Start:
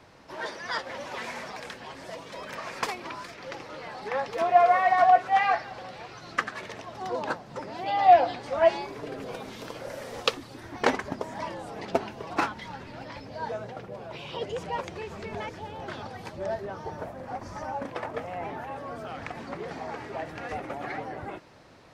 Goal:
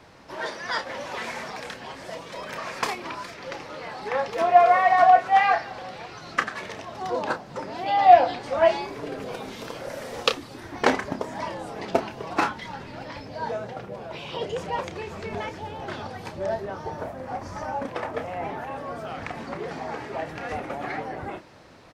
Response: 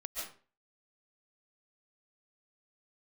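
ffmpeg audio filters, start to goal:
-filter_complex "[0:a]asplit=2[s0][s1];[s1]adelay=31,volume=0.335[s2];[s0][s2]amix=inputs=2:normalize=0,volume=1.41"

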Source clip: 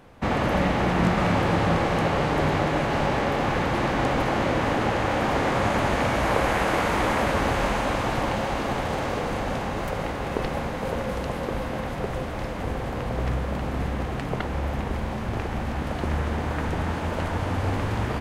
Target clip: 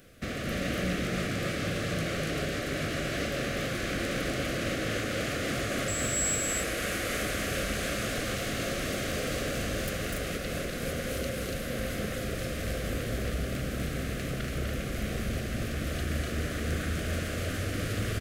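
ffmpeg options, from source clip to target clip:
-filter_complex "[0:a]alimiter=limit=0.133:level=0:latency=1:release=309,asettb=1/sr,asplit=3[s0][s1][s2];[s0]atrim=end=5.884[s3];[s1]atrim=start=5.88:end=6.35,asetpts=PTS-STARTPTS,afade=t=in:d=0.004:c=qsin,afade=t=out:st=0.466:d=0.004:c=qsin,aeval=exprs='val(0)+0.0126*sin(2*PI*7700*n/s)':c=same[s4];[s2]atrim=start=6.346[s5];[s3][s4]acrossfade=d=0.004:c1=hsin:c2=qsin[s6];[s6][s5]acrossfade=d=0.004:c1=qsin:c2=hsin,crystalizer=i=3:c=0,asoftclip=type=tanh:threshold=0.1,asuperstop=centerf=910:order=4:qfactor=1.5,aecho=1:1:247.8|285.7:0.708|0.708,volume=0.562"

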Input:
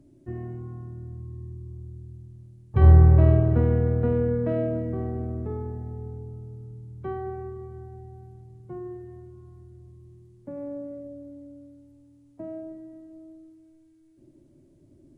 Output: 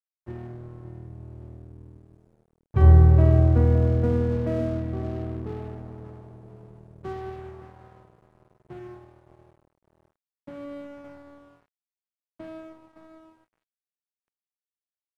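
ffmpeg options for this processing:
-filter_complex "[0:a]asplit=2[s0][s1];[s1]adelay=566,lowpass=f=960:p=1,volume=0.316,asplit=2[s2][s3];[s3]adelay=566,lowpass=f=960:p=1,volume=0.38,asplit=2[s4][s5];[s5]adelay=566,lowpass=f=960:p=1,volume=0.38,asplit=2[s6][s7];[s7]adelay=566,lowpass=f=960:p=1,volume=0.38[s8];[s2][s4][s6][s8]amix=inputs=4:normalize=0[s9];[s0][s9]amix=inputs=2:normalize=0,aeval=exprs='sgn(val(0))*max(abs(val(0))-0.00708,0)':c=same"

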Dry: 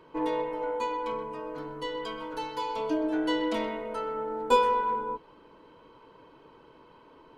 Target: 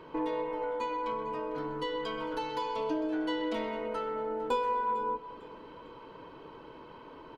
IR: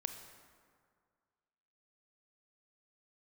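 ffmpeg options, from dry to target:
-filter_complex "[0:a]acompressor=threshold=0.01:ratio=2.5,aecho=1:1:451|902|1353:0.119|0.0452|0.0172,asplit=2[s0][s1];[1:a]atrim=start_sample=2205,lowpass=6300[s2];[s1][s2]afir=irnorm=-1:irlink=0,volume=1.06[s3];[s0][s3]amix=inputs=2:normalize=0"

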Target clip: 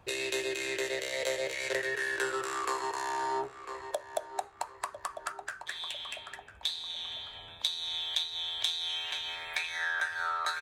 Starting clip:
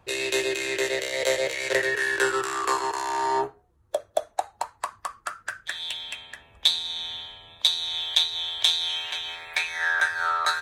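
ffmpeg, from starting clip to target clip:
-filter_complex "[0:a]asettb=1/sr,asplit=3[s0][s1][s2];[s0]atrim=end=5.324[s3];[s1]atrim=start=5.32:end=7.35,asetpts=PTS-STARTPTS,afade=t=in:d=0.004:c=qsin,afade=t=out:st=2.026:d=0.004:c=qsin,flanger=delay=5.4:depth=9.8:regen=-48:speed=1.9:shape=sinusoidal[s4];[s2]atrim=start=7.346[s5];[s3][s4]acrossfade=d=0.004:c1=hsin:c2=qsin[s6];[s6][s5]acrossfade=d=0.004:c1=qsin:c2=hsin,asplit=2[s7][s8];[s8]adelay=999,lowpass=f=3900:p=1,volume=0.158,asplit=2[s9][s10];[s10]adelay=999,lowpass=f=3900:p=1,volume=0.37,asplit=2[s11][s12];[s12]adelay=999,lowpass=f=3900:p=1,volume=0.37[s13];[s7][s9][s11][s13]amix=inputs=4:normalize=0,acompressor=threshold=0.0158:ratio=2"

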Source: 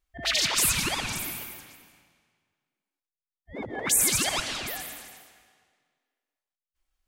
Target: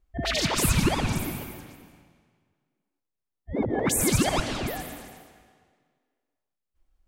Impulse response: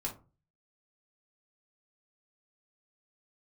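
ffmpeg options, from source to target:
-af "tiltshelf=f=930:g=8.5,volume=1.58"

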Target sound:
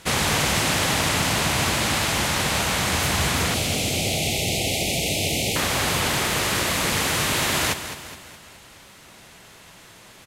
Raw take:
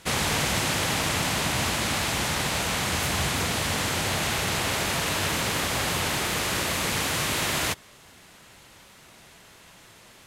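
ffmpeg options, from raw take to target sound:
-filter_complex "[0:a]asettb=1/sr,asplit=3[s0][s1][s2];[s0]atrim=end=3.544[s3];[s1]atrim=start=3.54:end=5.56,asetpts=PTS-STARTPTS,afade=t=in:d=0.004:c=qsin,afade=t=out:st=2.016:d=0.004:c=qsin,asuperstop=centerf=1300:order=12:qfactor=0.96[s4];[s2]atrim=start=5.556[s5];[s3][s4]acrossfade=d=0.004:c1=hsin:c2=qsin[s6];[s6][s5]acrossfade=d=0.004:c1=qsin:c2=hsin,aecho=1:1:209|418|627|836|1045:0.282|0.138|0.0677|0.0332|0.0162,volume=1.5"

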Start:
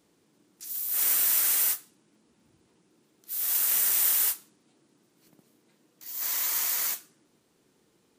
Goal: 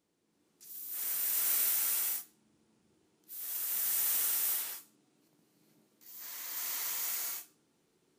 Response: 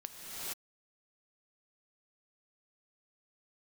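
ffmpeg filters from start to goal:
-filter_complex "[0:a]asettb=1/sr,asplit=3[s0][s1][s2];[s0]atrim=end=4.164[s3];[s1]atrim=start=4.16:end=6.57,asetpts=PTS-STARTPTS,afade=t=in:d=0.004:c=qsin,afade=t=out:st=2.406:d=0.004:c=qsin,acrossover=split=5600[s4][s5];[s5]acompressor=threshold=0.0355:ratio=4:attack=1:release=60[s6];[s4][s6]amix=inputs=2:normalize=0[s7];[s2]atrim=start=6.566[s8];[s3][s7]acrossfade=d=0.004:c1=hsin:c2=qsin[s9];[s9][s8]acrossfade=d=0.004:c1=qsin:c2=hsin[s10];[1:a]atrim=start_sample=2205[s11];[s10][s11]afir=irnorm=-1:irlink=0,volume=0.422"

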